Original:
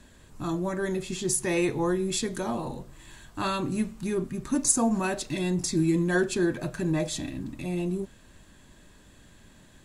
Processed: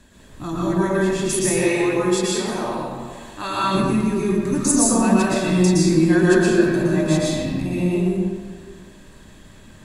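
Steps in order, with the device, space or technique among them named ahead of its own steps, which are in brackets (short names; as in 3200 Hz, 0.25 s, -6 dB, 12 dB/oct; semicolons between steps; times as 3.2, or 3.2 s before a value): stairwell (reverb RT60 1.8 s, pre-delay 0.11 s, DRR -6.5 dB); 1.68–3.75 low shelf 320 Hz -8.5 dB; gain +1.5 dB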